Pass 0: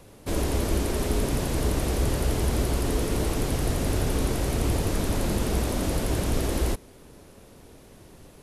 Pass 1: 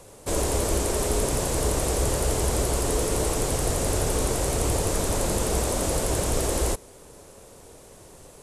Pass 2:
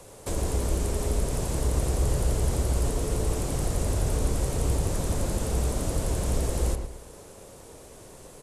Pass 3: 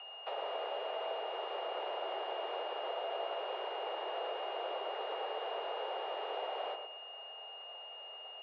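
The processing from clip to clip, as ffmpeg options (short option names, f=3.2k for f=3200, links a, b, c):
-af "equalizer=f=250:t=o:w=1:g=-4,equalizer=f=500:t=o:w=1:g=6,equalizer=f=1k:t=o:w=1:g=4,equalizer=f=8k:t=o:w=1:g=12,volume=-1dB"
-filter_complex "[0:a]acrossover=split=230[a][b];[b]acompressor=threshold=-33dB:ratio=5[c];[a][c]amix=inputs=2:normalize=0,asplit=2[d][e];[e]adelay=113,lowpass=f=2.5k:p=1,volume=-6dB,asplit=2[f][g];[g]adelay=113,lowpass=f=2.5k:p=1,volume=0.36,asplit=2[h][i];[i]adelay=113,lowpass=f=2.5k:p=1,volume=0.36,asplit=2[j][k];[k]adelay=113,lowpass=f=2.5k:p=1,volume=0.36[l];[d][f][h][j][l]amix=inputs=5:normalize=0"
-af "aeval=exprs='val(0)+0.00891*sin(2*PI*2600*n/s)':c=same,highpass=f=200:t=q:w=0.5412,highpass=f=200:t=q:w=1.307,lowpass=f=3.1k:t=q:w=0.5176,lowpass=f=3.1k:t=q:w=0.7071,lowpass=f=3.1k:t=q:w=1.932,afreqshift=240,volume=-5.5dB"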